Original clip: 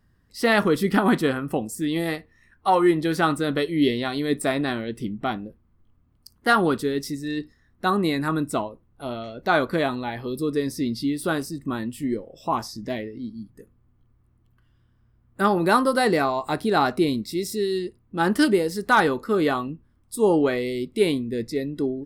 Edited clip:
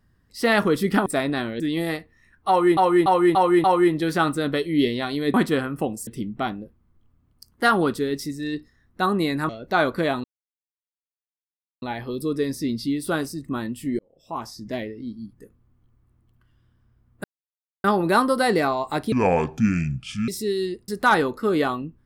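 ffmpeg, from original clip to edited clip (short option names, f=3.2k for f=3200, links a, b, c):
-filter_complex "[0:a]asplit=16[a][b][c][d][e][f][g][h][i][j][k][l][m][n][o][p];[a]atrim=end=1.062[q];[b]atrim=start=4.368:end=4.912[r];[c]atrim=start=1.788:end=2.962[s];[d]atrim=start=2.668:end=2.962[t];[e]atrim=start=2.668:end=2.962[u];[f]atrim=start=2.668:end=2.962[v];[g]atrim=start=2.668:end=4.372[w];[h]atrim=start=1.058:end=1.792[x];[i]atrim=start=4.908:end=8.332[y];[j]atrim=start=9.238:end=9.99,asetpts=PTS-STARTPTS,afade=t=out:st=0.748:d=0.004:c=hsin,apad=pad_dur=1.58[z];[k]atrim=start=9.99:end=12.16,asetpts=PTS-STARTPTS,afade=t=in:d=0.004:c=hsin,afade=t=out:st=2.166:d=0.004:c=hsin[aa];[l]atrim=start=12.16:end=15.41,asetpts=PTS-STARTPTS,afade=t=in:d=0.78,afade=t=out:st=3.246:d=0.004:c=hsin,apad=pad_dur=0.6[ab];[m]atrim=start=15.41:end=16.694,asetpts=PTS-STARTPTS,afade=t=in:d=0.004:c=hsin[ac];[n]atrim=start=16.69:end=17.41,asetpts=PTS-STARTPTS,asetrate=27342,aresample=44100[ad];[o]atrim=start=17.406:end=18.012[ae];[p]atrim=start=18.738[af];[q][r]acrossfade=d=0.004:c1=hsin:c2=hsin[ag];[ag][s]acrossfade=d=0.004:c1=hsin:c2=hsin[ah];[ah][t]acrossfade=d=0.004:c1=hsin:c2=hsin[ai];[ai][u]acrossfade=d=0.004:c1=hsin:c2=hsin[aj];[aj][v]acrossfade=d=0.004:c1=hsin:c2=hsin[ak];[ak][w]acrossfade=d=0.004:c1=hsin:c2=hsin[al];[al][x]acrossfade=d=0.004:c1=hsin:c2=hsin[am];[am][y]acrossfade=d=0.004:c1=hsin:c2=hsin[an];[z][aa][ab][ac]concat=n=4:v=0:a=1[ao];[an][ao]acrossfade=d=0.004:c1=hsin:c2=hsin[ap];[ap][ad]acrossfade=d=0.004:c1=hsin:c2=hsin[aq];[aq][ae]acrossfade=d=0.004:c1=hsin:c2=hsin[ar];[ar][af]acrossfade=d=0.004:c1=hsin:c2=hsin"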